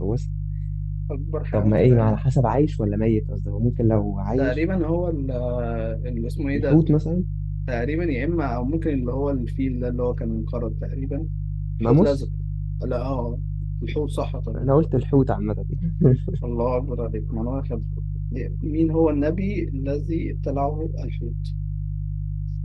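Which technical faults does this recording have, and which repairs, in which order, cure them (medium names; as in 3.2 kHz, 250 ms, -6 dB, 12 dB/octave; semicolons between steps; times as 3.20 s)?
hum 50 Hz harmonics 3 -27 dBFS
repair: de-hum 50 Hz, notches 3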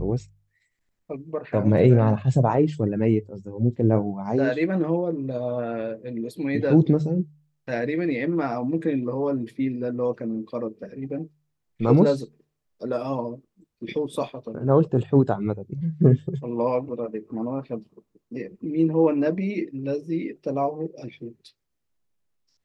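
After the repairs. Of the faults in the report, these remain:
nothing left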